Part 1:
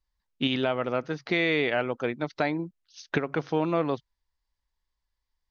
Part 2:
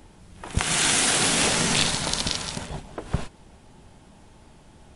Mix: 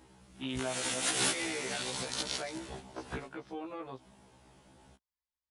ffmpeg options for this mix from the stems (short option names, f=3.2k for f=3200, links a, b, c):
-filter_complex "[0:a]volume=-11dB,asplit=2[a][b];[1:a]volume=-4.5dB[c];[b]apad=whole_len=218672[d];[c][d]sidechaincompress=threshold=-44dB:ratio=8:attack=25:release=126[e];[a][e]amix=inputs=2:normalize=0,highpass=f=120:p=1,afftfilt=real='re*1.73*eq(mod(b,3),0)':imag='im*1.73*eq(mod(b,3),0)':win_size=2048:overlap=0.75"